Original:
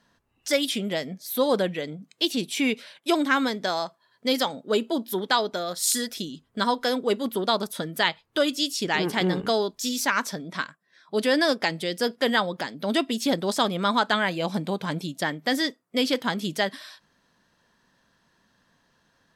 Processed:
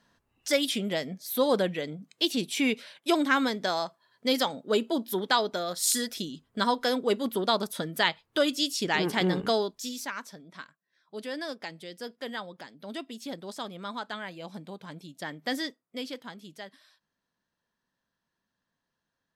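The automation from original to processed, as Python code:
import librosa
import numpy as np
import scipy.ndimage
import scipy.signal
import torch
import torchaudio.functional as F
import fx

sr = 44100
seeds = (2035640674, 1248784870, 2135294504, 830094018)

y = fx.gain(x, sr, db=fx.line((9.54, -2.0), (10.22, -14.0), (15.04, -14.0), (15.5, -6.0), (16.42, -18.0)))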